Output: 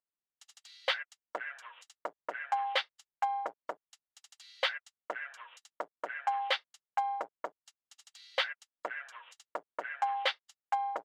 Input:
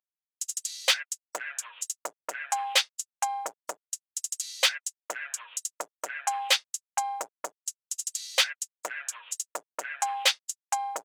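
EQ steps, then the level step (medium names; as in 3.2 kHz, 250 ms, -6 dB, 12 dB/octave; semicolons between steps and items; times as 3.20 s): distance through air 400 m; band-stop 2.5 kHz, Q 13; 0.0 dB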